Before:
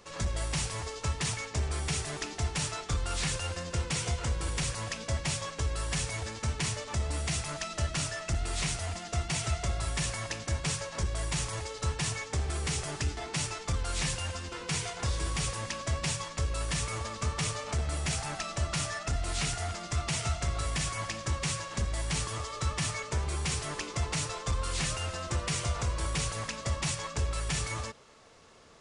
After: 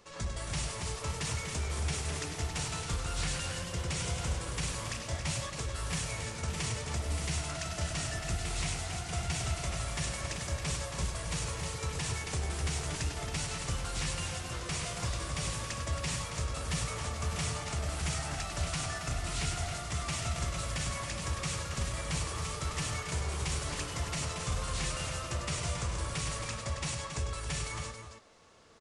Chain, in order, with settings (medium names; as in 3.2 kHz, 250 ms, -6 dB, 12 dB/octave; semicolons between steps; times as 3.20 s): loudspeakers at several distances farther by 34 m -8 dB, 94 m -8 dB; ever faster or slower copies 310 ms, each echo +1 st, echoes 3, each echo -6 dB; trim -4.5 dB